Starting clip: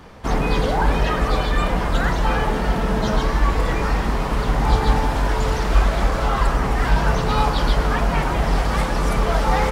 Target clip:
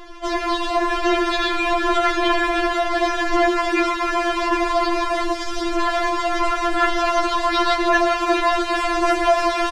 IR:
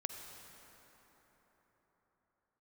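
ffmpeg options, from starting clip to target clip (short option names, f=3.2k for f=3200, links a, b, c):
-filter_complex "[0:a]asettb=1/sr,asplit=3[a][b][c];[a]atrim=end=3.344[d];[b]atrim=start=3.34:end=4.33,asetpts=PTS-STARTPTS,afade=t=in:d=0.004:c=qsin,afade=t=out:st=0.986:d=0.004:c=qsin,highpass=120[e];[c]atrim=start=4.326[f];[d][e]acrossfade=d=0.004:c1=hsin:c2=qsin[g];[g][f]acrossfade=d=0.004:c1=qsin:c2=hsin,aecho=1:1:790:0.447[h];[1:a]atrim=start_sample=2205[i];[h][i]afir=irnorm=-1:irlink=0,asoftclip=type=tanh:threshold=-16.5dB,lowpass=7.1k,aphaser=in_gain=1:out_gain=1:delay=4:decay=0.39:speed=0.88:type=sinusoidal,asettb=1/sr,asplit=3[j][k][l];[j]atrim=end=5.224[m];[k]atrim=start=5.22:end=5.76,asetpts=PTS-STARTPTS,afade=t=in:d=0.004:c=qsin,afade=t=out:st=0.536:d=0.004:c=qsin,acrossover=split=320|3000[n][o][p];[o]acompressor=threshold=-33dB:ratio=6[q];[n][q][p]amix=inputs=3:normalize=0[r];[l]atrim=start=5.756[s];[m][r]acrossfade=d=0.004:c1=hsin:c2=qsin[t];[t][s]acrossfade=d=0.004:c1=qsin:c2=hsin,afftfilt=real='re*4*eq(mod(b,16),0)':imag='im*4*eq(mod(b,16),0)':win_size=2048:overlap=0.75,volume=9dB"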